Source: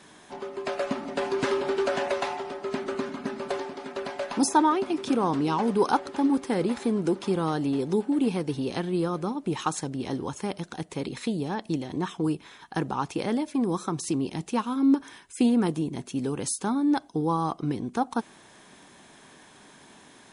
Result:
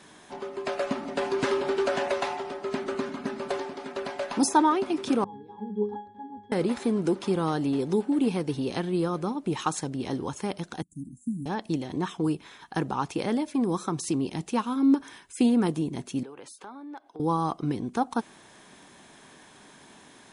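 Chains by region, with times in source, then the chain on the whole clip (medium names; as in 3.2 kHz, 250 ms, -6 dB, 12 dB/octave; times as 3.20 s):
5.24–6.52 s: low-pass 7.9 kHz + bass shelf 230 Hz +8.5 dB + pitch-class resonator G#, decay 0.38 s
10.82–11.46 s: Chebyshev band-stop 280–7000 Hz, order 5 + upward expansion, over -51 dBFS
16.23–17.20 s: three-band isolator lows -18 dB, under 360 Hz, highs -15 dB, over 3.3 kHz + compression 2.5:1, threshold -44 dBFS + hard clipper -32.5 dBFS
whole clip: none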